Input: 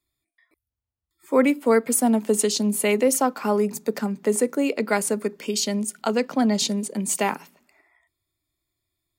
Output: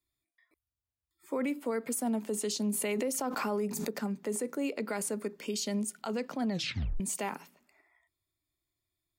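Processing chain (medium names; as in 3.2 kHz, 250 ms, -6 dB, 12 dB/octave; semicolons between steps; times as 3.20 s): peak limiter -18.5 dBFS, peak gain reduction 11 dB; 2.70–3.89 s: swell ahead of each attack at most 25 dB/s; 6.50 s: tape stop 0.50 s; trim -6.5 dB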